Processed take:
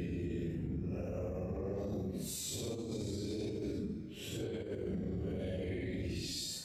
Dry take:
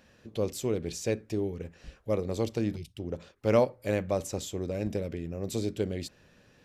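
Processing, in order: Paulstretch 7.4×, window 0.05 s, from 5.19; negative-ratio compressor -32 dBFS, ratio -0.5; limiter -31 dBFS, peak gain reduction 9.5 dB

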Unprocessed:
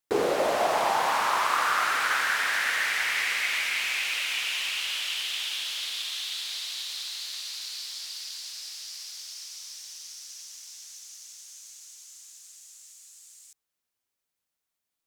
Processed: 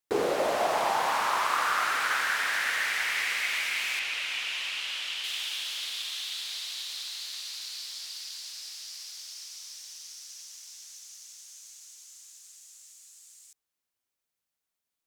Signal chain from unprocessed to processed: 3.99–5.24 high shelf 8300 Hz -11.5 dB; gain -2 dB

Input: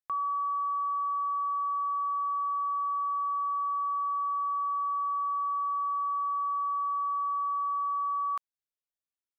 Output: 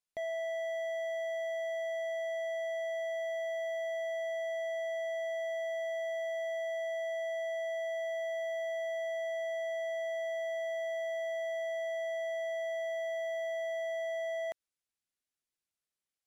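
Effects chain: speed mistake 78 rpm record played at 45 rpm; hard clip -34 dBFS, distortion -12 dB; bell 950 Hz -5 dB 0.78 oct; gain +1 dB

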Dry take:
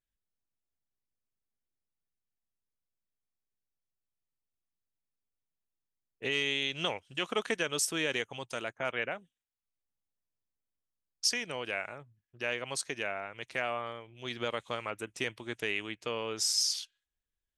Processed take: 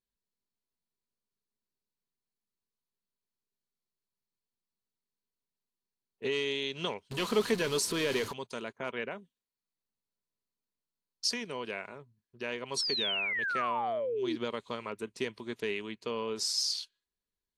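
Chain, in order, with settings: 7.11–8.32 zero-crossing step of -32.5 dBFS; bell 4300 Hz +11 dB 0.35 oct; small resonant body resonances 220/400/980 Hz, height 11 dB, ringing for 35 ms; 12.77–14.36 painted sound fall 300–5800 Hz -27 dBFS; gain -5.5 dB; AAC 64 kbps 32000 Hz

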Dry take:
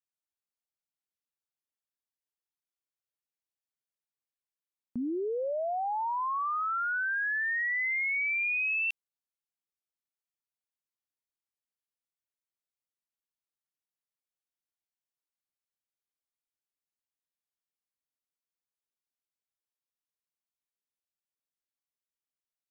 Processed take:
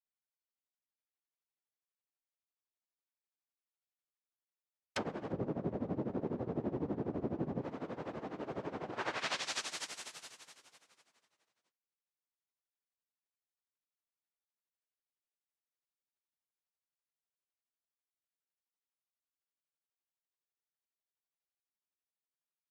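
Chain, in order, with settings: sample leveller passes 5; echo with dull and thin repeats by turns 0.117 s, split 1500 Hz, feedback 77%, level -7.5 dB; limiter -26.5 dBFS, peak gain reduction 6 dB; noise vocoder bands 1; treble ducked by the level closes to 380 Hz, closed at -28 dBFS; 5.32–7.62 tilt shelf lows +9 dB, about 710 Hz; tremolo 12 Hz, depth 85%; low shelf 250 Hz -11 dB; mismatched tape noise reduction decoder only; gain +11 dB

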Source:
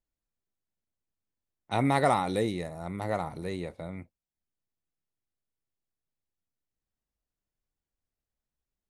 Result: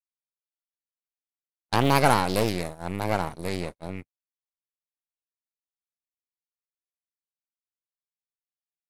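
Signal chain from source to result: half-wave gain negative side -12 dB; gate -39 dBFS, range -42 dB; high shelf 4000 Hz +8.5 dB; Doppler distortion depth 0.63 ms; gain +6.5 dB

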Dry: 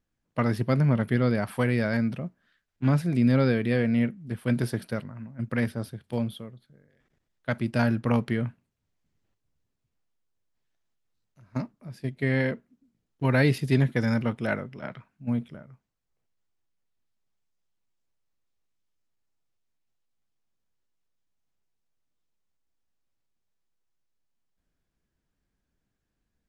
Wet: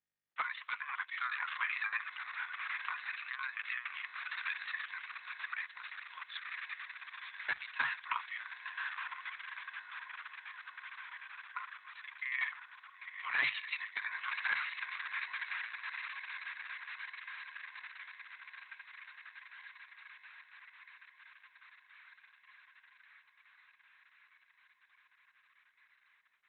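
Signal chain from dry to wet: steep high-pass 850 Hz 72 dB/oct; on a send: diffused feedback echo 1.018 s, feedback 70%, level -9.5 dB; on the sum: wavefolder -22.5 dBFS; in parallel at -0.5 dB: limiter -31.5 dBFS, peak gain reduction 9 dB; on the sum: gate with hold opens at -59 dBFS; frequency shift +130 Hz; 5.54–6.5 transient shaper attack -6 dB, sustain -10 dB; gain -1.5 dB; Opus 6 kbps 48000 Hz

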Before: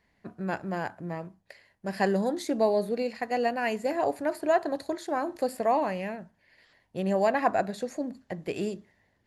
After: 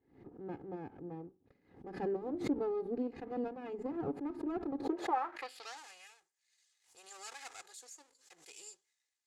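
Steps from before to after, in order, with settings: minimum comb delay 2.4 ms; band-pass sweep 240 Hz -> 7500 Hz, 4.77–5.78; backwards sustainer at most 120 dB/s; gain +1 dB

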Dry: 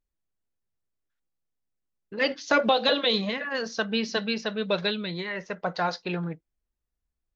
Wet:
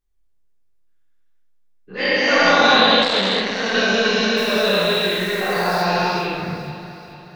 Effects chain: spectral dilation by 0.48 s; chorus voices 6, 1.1 Hz, delay 24 ms, depth 3 ms; 4.36–5.81 added noise white -42 dBFS; echo with dull and thin repeats by turns 0.218 s, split 1100 Hz, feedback 69%, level -10 dB; reverb RT60 1.0 s, pre-delay 3 ms, DRR -0.5 dB; 3.02–3.74 core saturation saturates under 1700 Hz

